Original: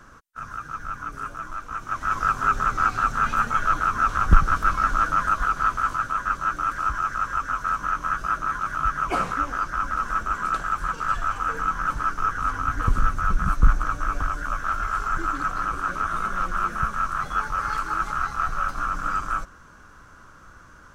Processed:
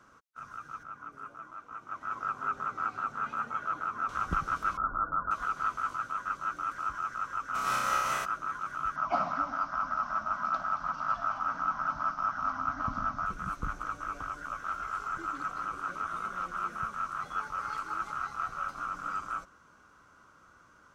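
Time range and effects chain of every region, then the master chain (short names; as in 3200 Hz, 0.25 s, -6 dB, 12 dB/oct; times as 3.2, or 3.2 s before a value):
0.83–4.09 HPF 140 Hz 6 dB/oct + high shelf 2500 Hz -11 dB
4.77–5.31 elliptic low-pass 1400 Hz + low shelf 81 Hz +10 dB
7.54–8.24 spectral whitening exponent 0.6 + doubler 15 ms -5 dB + flutter echo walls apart 5.4 m, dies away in 1.2 s
8.96–13.26 EQ curve 120 Hz 0 dB, 270 Hz +6 dB, 440 Hz -21 dB, 620 Hz +10 dB, 2500 Hz -4 dB, 3600 Hz -2 dB, 5400 Hz +3 dB, 9200 Hz -26 dB + split-band echo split 1300 Hz, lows 0.13 s, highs 0.225 s, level -12 dB
whole clip: HPF 210 Hz 6 dB/oct; high shelf 8000 Hz -5 dB; notch 1700 Hz, Q 8.4; gain -8.5 dB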